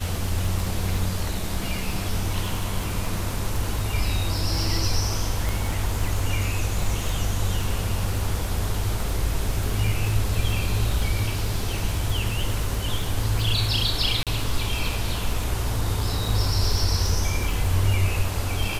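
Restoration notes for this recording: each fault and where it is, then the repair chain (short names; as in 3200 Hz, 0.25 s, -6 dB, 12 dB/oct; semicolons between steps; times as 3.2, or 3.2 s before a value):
crackle 48/s -28 dBFS
5.49 pop
14.23–14.27 gap 37 ms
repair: de-click; interpolate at 14.23, 37 ms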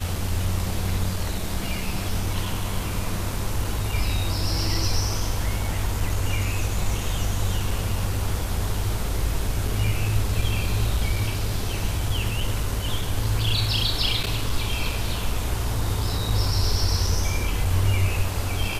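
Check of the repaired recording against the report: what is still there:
5.49 pop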